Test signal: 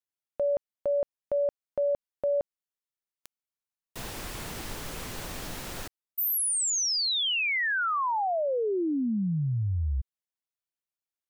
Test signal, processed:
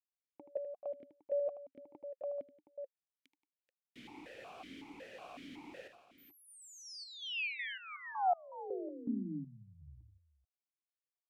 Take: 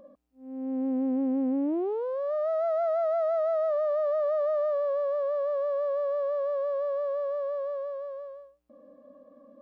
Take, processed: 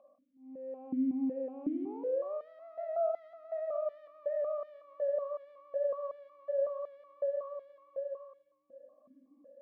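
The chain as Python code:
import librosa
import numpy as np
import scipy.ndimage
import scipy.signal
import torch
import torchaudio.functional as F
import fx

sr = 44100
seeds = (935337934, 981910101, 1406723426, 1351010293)

y = fx.echo_multitap(x, sr, ms=(78, 177, 433), db=(-9.0, -14.0, -12.5))
y = fx.vowel_held(y, sr, hz=5.4)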